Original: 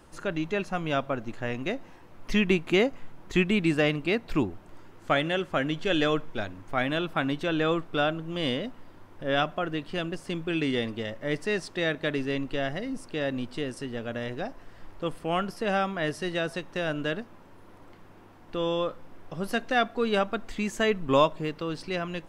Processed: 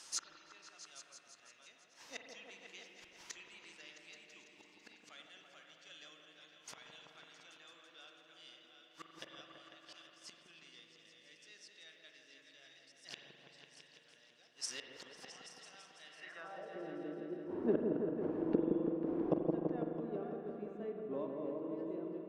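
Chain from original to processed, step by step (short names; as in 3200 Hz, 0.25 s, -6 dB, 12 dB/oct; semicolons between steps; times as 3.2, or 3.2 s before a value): reverse delay 0.646 s, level -7 dB; flipped gate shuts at -28 dBFS, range -30 dB; spring tank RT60 2 s, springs 43 ms, chirp 65 ms, DRR 5 dB; band-pass sweep 5800 Hz -> 350 Hz, 15.95–16.81; repeats that get brighter 0.166 s, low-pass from 750 Hz, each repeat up 1 oct, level -3 dB; gain +16.5 dB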